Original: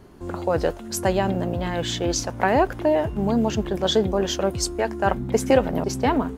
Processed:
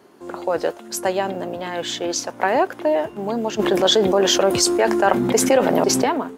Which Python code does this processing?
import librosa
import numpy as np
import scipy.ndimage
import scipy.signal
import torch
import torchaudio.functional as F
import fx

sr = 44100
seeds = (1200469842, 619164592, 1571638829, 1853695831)

y = scipy.signal.sosfilt(scipy.signal.butter(2, 310.0, 'highpass', fs=sr, output='sos'), x)
y = fx.env_flatten(y, sr, amount_pct=70, at=(3.59, 6.04))
y = y * 10.0 ** (1.5 / 20.0)